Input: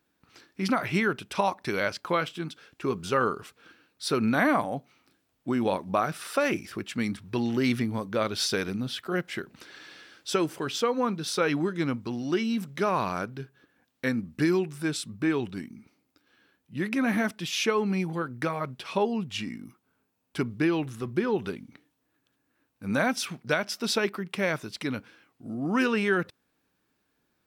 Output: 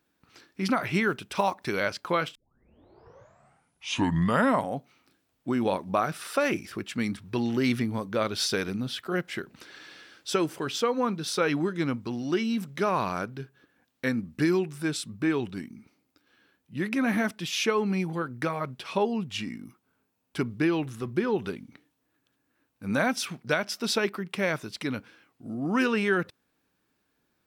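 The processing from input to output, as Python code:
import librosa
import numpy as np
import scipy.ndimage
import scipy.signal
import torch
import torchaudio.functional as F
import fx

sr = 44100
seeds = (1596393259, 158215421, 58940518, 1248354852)

y = fx.block_float(x, sr, bits=7, at=(1.06, 1.68), fade=0.02)
y = fx.edit(y, sr, fx.tape_start(start_s=2.35, length_s=2.41), tone=tone)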